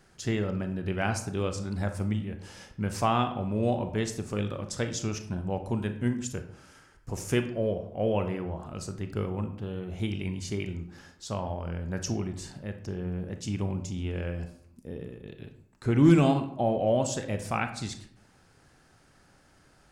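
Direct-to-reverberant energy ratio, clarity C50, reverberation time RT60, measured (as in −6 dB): 7.5 dB, 10.5 dB, 0.70 s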